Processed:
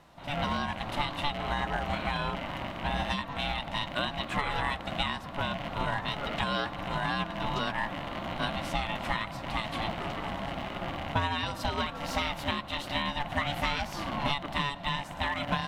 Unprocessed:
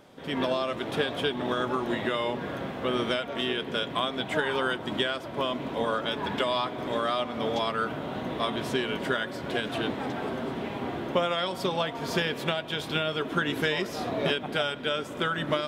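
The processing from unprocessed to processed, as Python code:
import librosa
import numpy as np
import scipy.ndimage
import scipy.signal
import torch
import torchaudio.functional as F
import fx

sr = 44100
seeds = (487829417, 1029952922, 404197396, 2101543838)

y = fx.rattle_buzz(x, sr, strikes_db=-38.0, level_db=-27.0)
y = y * np.sin(2.0 * np.pi * 430.0 * np.arange(len(y)) / sr)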